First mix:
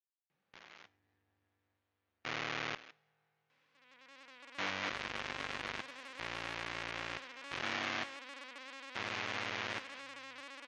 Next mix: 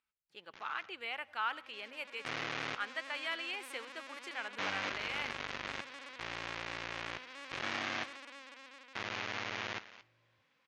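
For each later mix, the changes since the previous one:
speech: unmuted; second sound: entry -2.35 s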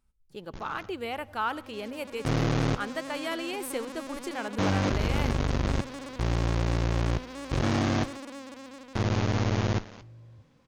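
master: remove band-pass filter 2.3 kHz, Q 1.2

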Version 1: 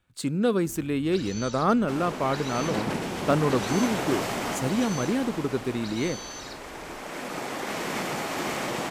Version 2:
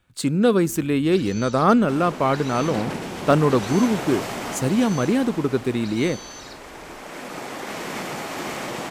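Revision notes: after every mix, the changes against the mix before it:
speech +6.0 dB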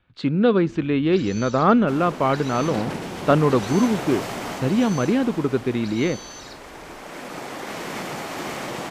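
speech: add low-pass 3.8 kHz 24 dB/octave; second sound: send off

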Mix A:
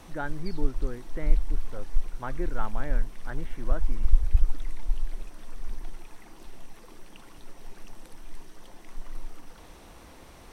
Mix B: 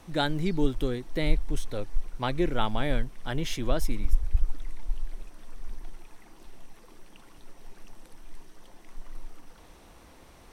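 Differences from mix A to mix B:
speech: remove four-pole ladder low-pass 1.9 kHz, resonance 40%; background -3.5 dB

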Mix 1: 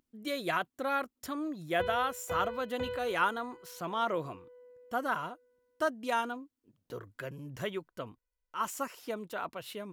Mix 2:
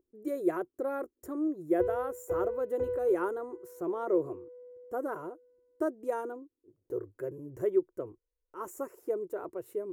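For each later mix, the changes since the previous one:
speech: add treble shelf 7.6 kHz +8.5 dB; master: add FFT filter 100 Hz 0 dB, 230 Hz -10 dB, 360 Hz +14 dB, 720 Hz -5 dB, 1.1 kHz -8 dB, 2 kHz -14 dB, 3.2 kHz -29 dB, 4.9 kHz -24 dB, 7 kHz -12 dB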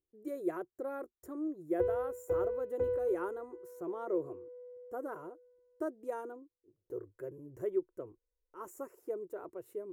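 speech -6.0 dB; first sound: muted

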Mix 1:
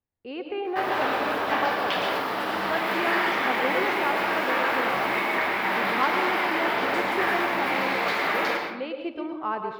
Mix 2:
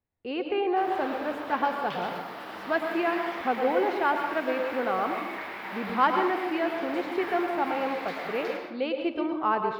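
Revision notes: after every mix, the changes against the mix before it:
speech +3.5 dB; background -12.0 dB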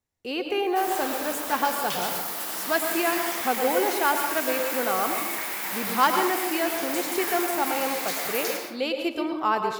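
master: remove distance through air 380 m

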